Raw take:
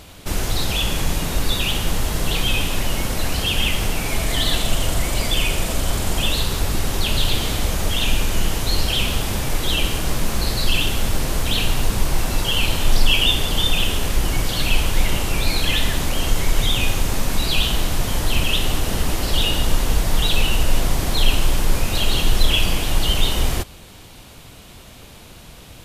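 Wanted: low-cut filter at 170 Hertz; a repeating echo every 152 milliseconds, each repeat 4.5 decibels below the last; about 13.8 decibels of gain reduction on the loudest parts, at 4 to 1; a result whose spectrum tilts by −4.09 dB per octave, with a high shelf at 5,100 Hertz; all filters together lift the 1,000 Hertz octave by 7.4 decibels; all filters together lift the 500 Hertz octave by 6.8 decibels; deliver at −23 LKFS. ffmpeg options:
ffmpeg -i in.wav -af "highpass=170,equalizer=frequency=500:width_type=o:gain=6.5,equalizer=frequency=1000:width_type=o:gain=7.5,highshelf=frequency=5100:gain=-7,acompressor=threshold=-32dB:ratio=4,aecho=1:1:152|304|456|608|760|912|1064|1216|1368:0.596|0.357|0.214|0.129|0.0772|0.0463|0.0278|0.0167|0.01,volume=8dB" out.wav

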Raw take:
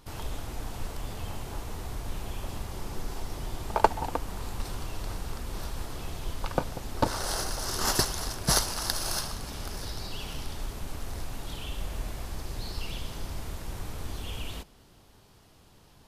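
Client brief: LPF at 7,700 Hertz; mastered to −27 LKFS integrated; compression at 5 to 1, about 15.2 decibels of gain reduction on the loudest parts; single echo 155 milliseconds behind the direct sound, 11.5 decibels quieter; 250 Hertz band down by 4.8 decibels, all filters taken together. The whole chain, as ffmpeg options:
ffmpeg -i in.wav -af "lowpass=7700,equalizer=frequency=250:width_type=o:gain=-7,acompressor=threshold=-34dB:ratio=5,aecho=1:1:155:0.266,volume=14dB" out.wav

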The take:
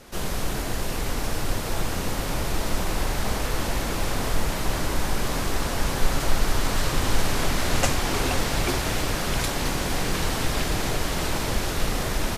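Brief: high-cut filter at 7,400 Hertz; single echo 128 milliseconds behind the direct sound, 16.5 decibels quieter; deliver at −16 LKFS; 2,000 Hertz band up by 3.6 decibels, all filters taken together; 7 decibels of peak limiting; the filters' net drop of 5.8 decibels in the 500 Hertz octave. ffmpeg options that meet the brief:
ffmpeg -i in.wav -af "lowpass=7400,equalizer=frequency=500:width_type=o:gain=-8,equalizer=frequency=2000:width_type=o:gain=5,alimiter=limit=-15dB:level=0:latency=1,aecho=1:1:128:0.15,volume=11.5dB" out.wav

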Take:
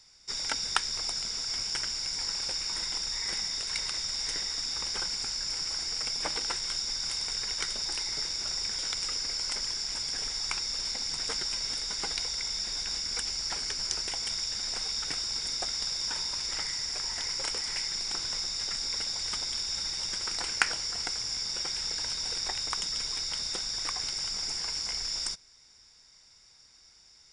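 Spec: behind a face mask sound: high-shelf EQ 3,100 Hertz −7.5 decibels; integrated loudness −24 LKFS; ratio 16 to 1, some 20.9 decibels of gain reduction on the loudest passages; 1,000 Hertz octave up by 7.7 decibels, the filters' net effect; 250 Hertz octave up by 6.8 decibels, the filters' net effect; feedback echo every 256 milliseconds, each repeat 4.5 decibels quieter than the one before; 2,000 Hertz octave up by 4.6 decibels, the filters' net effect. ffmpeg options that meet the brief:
ffmpeg -i in.wav -af "equalizer=frequency=250:width_type=o:gain=8.5,equalizer=frequency=1000:width_type=o:gain=9,equalizer=frequency=2000:width_type=o:gain=5,acompressor=threshold=-38dB:ratio=16,highshelf=frequency=3100:gain=-7.5,aecho=1:1:256|512|768|1024|1280|1536|1792|2048|2304:0.596|0.357|0.214|0.129|0.0772|0.0463|0.0278|0.0167|0.01,volume=18dB" out.wav

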